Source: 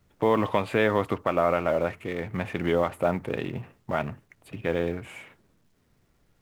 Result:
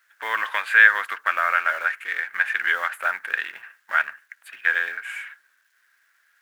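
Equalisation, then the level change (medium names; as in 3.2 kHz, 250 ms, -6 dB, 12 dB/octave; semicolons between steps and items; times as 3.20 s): resonant high-pass 1.6 kHz, resonance Q 9.2; treble shelf 7.3 kHz +5.5 dB; +2.5 dB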